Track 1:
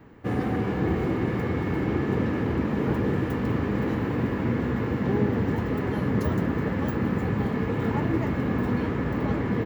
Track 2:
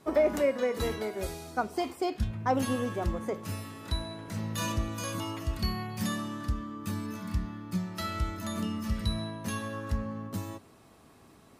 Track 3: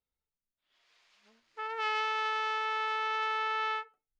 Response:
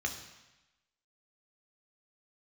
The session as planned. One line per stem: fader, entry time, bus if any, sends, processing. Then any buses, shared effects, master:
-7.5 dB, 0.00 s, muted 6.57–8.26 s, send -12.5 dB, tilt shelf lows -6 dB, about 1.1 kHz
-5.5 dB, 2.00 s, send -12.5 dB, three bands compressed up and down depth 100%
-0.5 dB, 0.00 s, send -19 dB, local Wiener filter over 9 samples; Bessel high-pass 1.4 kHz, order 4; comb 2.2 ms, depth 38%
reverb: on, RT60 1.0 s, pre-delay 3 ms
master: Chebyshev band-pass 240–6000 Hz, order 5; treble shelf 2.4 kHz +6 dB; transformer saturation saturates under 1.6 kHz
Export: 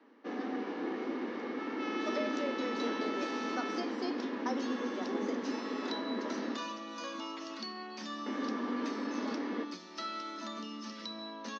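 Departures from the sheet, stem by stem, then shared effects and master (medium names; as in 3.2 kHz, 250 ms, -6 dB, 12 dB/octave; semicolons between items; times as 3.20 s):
stem 1: missing tilt shelf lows -6 dB, about 1.1 kHz; stem 3 -0.5 dB -> -9.0 dB; master: missing transformer saturation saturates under 1.6 kHz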